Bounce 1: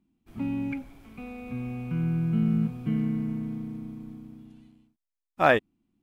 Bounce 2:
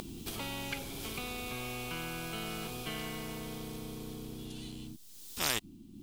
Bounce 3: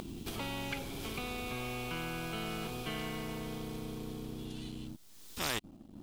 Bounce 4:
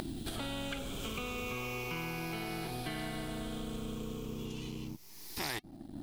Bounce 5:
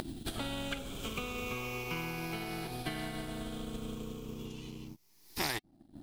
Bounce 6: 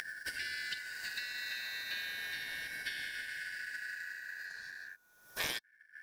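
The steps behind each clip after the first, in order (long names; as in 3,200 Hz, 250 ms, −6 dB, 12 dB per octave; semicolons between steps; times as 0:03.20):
upward compression, threshold −39 dBFS; flat-topped bell 1,100 Hz −14.5 dB 2.6 octaves; every bin compressed towards the loudest bin 10 to 1
leveller curve on the samples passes 2; high-shelf EQ 4,100 Hz −7 dB; level −6 dB
rippled gain that drifts along the octave scale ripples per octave 0.79, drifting −0.34 Hz, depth 8 dB; downward compressor 2.5 to 1, threshold −44 dBFS, peak gain reduction 9.5 dB; flanger 0.34 Hz, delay 0.7 ms, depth 7.1 ms, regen −84%; level +10 dB
expander for the loud parts 2.5 to 1, over −48 dBFS; level +5 dB
band-splitting scrambler in four parts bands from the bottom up 4123; level −2.5 dB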